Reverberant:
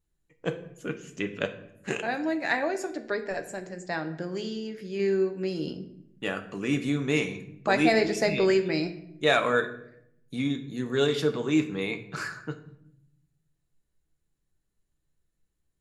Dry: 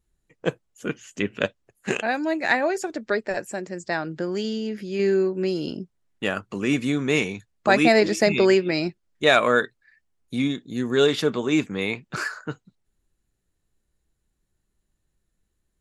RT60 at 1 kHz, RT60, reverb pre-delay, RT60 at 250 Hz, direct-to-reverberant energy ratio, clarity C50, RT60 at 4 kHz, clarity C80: 0.65 s, 0.75 s, 6 ms, 1.3 s, 6.5 dB, 12.0 dB, 0.55 s, 15.0 dB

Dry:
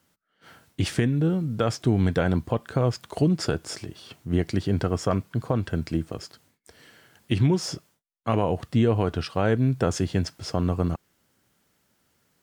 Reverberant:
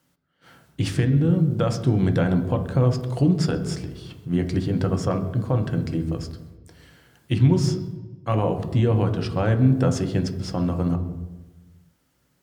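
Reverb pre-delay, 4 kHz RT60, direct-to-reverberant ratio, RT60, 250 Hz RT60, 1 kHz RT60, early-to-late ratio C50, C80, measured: 3 ms, 0.85 s, 6.0 dB, 1.1 s, 1.3 s, 1.1 s, 10.5 dB, 12.0 dB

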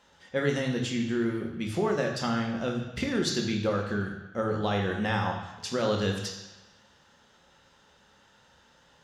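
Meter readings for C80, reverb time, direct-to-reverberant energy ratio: 7.5 dB, 1.1 s, 1.5 dB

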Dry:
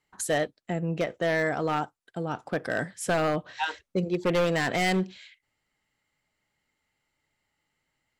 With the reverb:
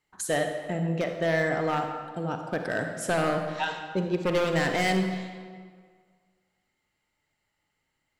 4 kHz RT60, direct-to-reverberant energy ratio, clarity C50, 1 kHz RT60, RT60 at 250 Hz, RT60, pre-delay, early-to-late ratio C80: 1.2 s, 4.5 dB, 5.0 dB, 1.8 s, 1.8 s, 1.8 s, 37 ms, 6.5 dB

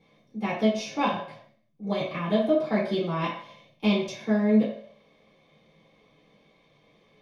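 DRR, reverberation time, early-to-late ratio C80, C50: -9.5 dB, 0.60 s, 8.0 dB, 4.5 dB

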